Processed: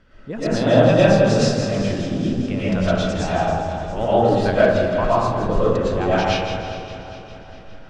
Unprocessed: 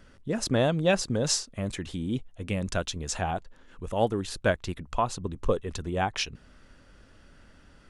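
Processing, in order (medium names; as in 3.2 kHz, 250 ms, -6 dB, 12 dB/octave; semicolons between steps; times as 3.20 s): backward echo that repeats 203 ms, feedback 70%, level -11 dB; low-pass 4.1 kHz 12 dB/octave; thinning echo 163 ms, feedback 47%, high-pass 490 Hz, level -9 dB; reverberation RT60 1.3 s, pre-delay 75 ms, DRR -9.5 dB; in parallel at -5 dB: one-sided clip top -4.5 dBFS, bottom -4 dBFS; on the sum: trim -5 dB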